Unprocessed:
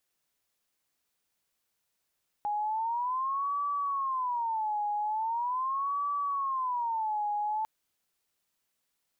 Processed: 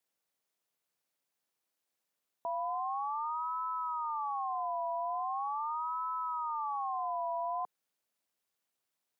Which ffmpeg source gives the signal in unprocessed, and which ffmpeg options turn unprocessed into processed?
-f lavfi -i "aevalsrc='0.0398*sin(2*PI*(990*t-160/(2*PI*0.41)*sin(2*PI*0.41*t)))':duration=5.2:sample_rate=44100"
-af "highpass=frequency=310:width=0.5412,highpass=frequency=310:width=1.3066,tiltshelf=frequency=670:gain=3.5,aeval=exprs='val(0)*sin(2*PI*150*n/s)':channel_layout=same"

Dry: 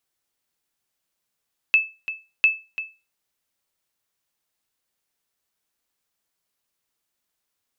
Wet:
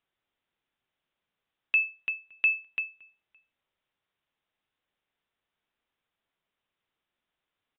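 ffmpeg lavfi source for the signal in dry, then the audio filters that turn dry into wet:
-f lavfi -i "aevalsrc='0.376*(sin(2*PI*2620*mod(t,0.7))*exp(-6.91*mod(t,0.7)/0.28)+0.224*sin(2*PI*2620*max(mod(t,0.7)-0.34,0))*exp(-6.91*max(mod(t,0.7)-0.34,0)/0.28))':duration=1.4:sample_rate=44100"
-filter_complex "[0:a]alimiter=limit=-16dB:level=0:latency=1:release=75,asplit=2[link_01][link_02];[link_02]adelay=565.6,volume=-28dB,highshelf=frequency=4000:gain=-12.7[link_03];[link_01][link_03]amix=inputs=2:normalize=0,aresample=8000,aresample=44100"

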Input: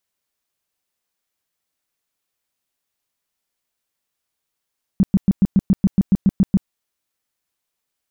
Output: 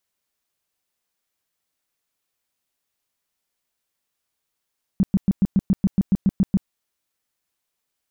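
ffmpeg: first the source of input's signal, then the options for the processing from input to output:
-f lavfi -i "aevalsrc='0.355*sin(2*PI*193*mod(t,0.14))*lt(mod(t,0.14),6/193)':duration=1.68:sample_rate=44100"
-af "alimiter=limit=-12.5dB:level=0:latency=1:release=18"

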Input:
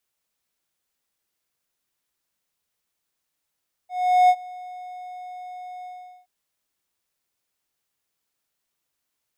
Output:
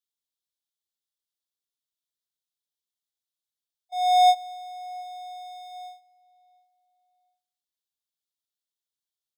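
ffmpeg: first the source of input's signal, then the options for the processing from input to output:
-f lavfi -i "aevalsrc='0.355*(1-4*abs(mod(728*t+0.25,1)-0.5))':duration=2.374:sample_rate=44100,afade=type=in:duration=0.402,afade=type=out:start_time=0.402:duration=0.058:silence=0.0668,afade=type=out:start_time=1.96:duration=0.414"
-filter_complex "[0:a]agate=range=-20dB:threshold=-38dB:ratio=16:detection=peak,highshelf=frequency=2800:width_type=q:width=3:gain=7,asplit=2[link_01][link_02];[link_02]adelay=707,lowpass=frequency=2100:poles=1,volume=-22dB,asplit=2[link_03][link_04];[link_04]adelay=707,lowpass=frequency=2100:poles=1,volume=0.33[link_05];[link_01][link_03][link_05]amix=inputs=3:normalize=0"

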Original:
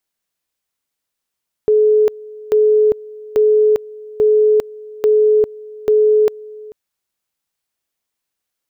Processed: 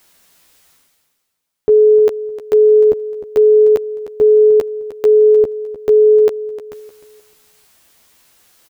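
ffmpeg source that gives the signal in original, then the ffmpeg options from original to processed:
-f lavfi -i "aevalsrc='pow(10,(-8.5-22*gte(mod(t,0.84),0.4))/20)*sin(2*PI*427*t)':duration=5.04:sample_rate=44100"
-filter_complex "[0:a]areverse,acompressor=mode=upward:threshold=-33dB:ratio=2.5,areverse,asplit=2[link_01][link_02];[link_02]adelay=12,volume=-4.5dB[link_03];[link_01][link_03]amix=inputs=2:normalize=0,aecho=1:1:306|612|918:0.211|0.0613|0.0178"

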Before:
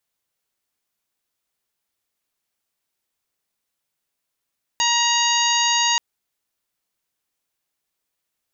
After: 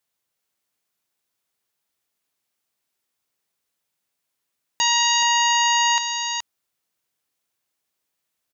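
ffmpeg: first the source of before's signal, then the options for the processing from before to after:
-f lavfi -i "aevalsrc='0.0794*sin(2*PI*946*t)+0.0501*sin(2*PI*1892*t)+0.0708*sin(2*PI*2838*t)+0.0531*sin(2*PI*3784*t)+0.0501*sin(2*PI*4730*t)+0.0158*sin(2*PI*5676*t)+0.0841*sin(2*PI*6622*t)':duration=1.18:sample_rate=44100"
-af "highpass=67,aecho=1:1:424:0.447"

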